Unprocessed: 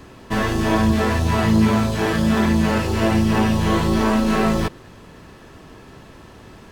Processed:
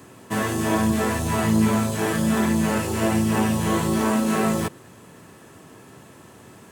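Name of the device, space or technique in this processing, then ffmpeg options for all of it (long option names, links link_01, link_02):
budget condenser microphone: -af "highpass=frequency=95:width=0.5412,highpass=frequency=95:width=1.3066,highshelf=frequency=6300:width_type=q:width=1.5:gain=8,volume=-3dB"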